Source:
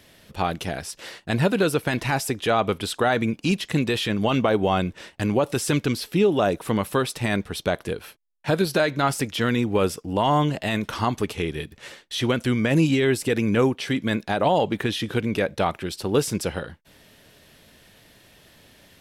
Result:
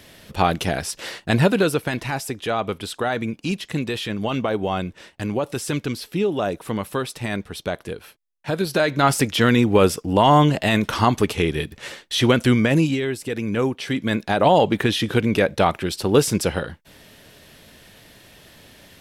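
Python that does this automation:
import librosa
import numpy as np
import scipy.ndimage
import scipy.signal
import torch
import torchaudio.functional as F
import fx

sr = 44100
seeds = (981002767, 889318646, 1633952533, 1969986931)

y = fx.gain(x, sr, db=fx.line((1.24, 6.0), (2.1, -2.5), (8.52, -2.5), (9.14, 6.0), (12.53, 6.0), (13.14, -5.5), (14.52, 5.0)))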